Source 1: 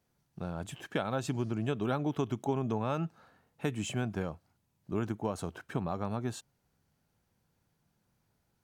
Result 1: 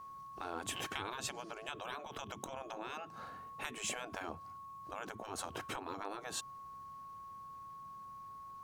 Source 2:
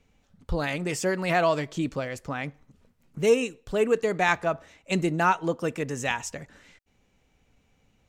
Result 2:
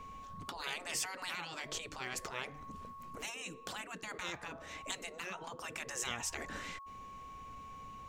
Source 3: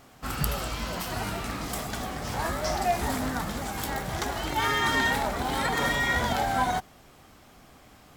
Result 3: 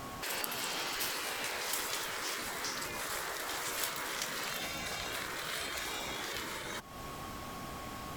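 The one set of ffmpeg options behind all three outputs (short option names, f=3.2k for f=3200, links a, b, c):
-af "aeval=exprs='val(0)+0.00141*sin(2*PI*1100*n/s)':c=same,acompressor=threshold=-37dB:ratio=10,afftfilt=real='re*lt(hypot(re,im),0.0178)':imag='im*lt(hypot(re,im),0.0178)':win_size=1024:overlap=0.75,volume=9.5dB"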